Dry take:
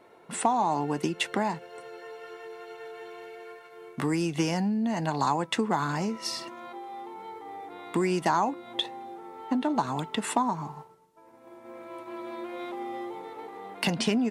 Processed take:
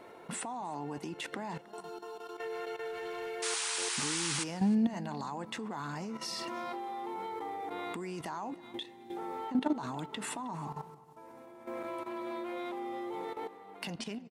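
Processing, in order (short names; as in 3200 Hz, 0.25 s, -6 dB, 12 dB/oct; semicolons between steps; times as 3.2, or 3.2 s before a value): ending faded out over 1.29 s; 8.52–9.17 band shelf 840 Hz -10 dB; in parallel at +1.5 dB: compressor 6:1, threshold -41 dBFS, peak gain reduction 20 dB; on the sum: limiter -20.5 dBFS, peak gain reduction 10 dB; level quantiser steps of 13 dB; 1.61–2.38 fixed phaser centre 530 Hz, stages 6; 2.9–3.3 hard clip -34.5 dBFS, distortion -36 dB; 3.42–4.44 painted sound noise 800–10000 Hz -35 dBFS; outdoor echo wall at 54 m, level -19 dB; on a send at -21 dB: reverb RT60 3.0 s, pre-delay 3 ms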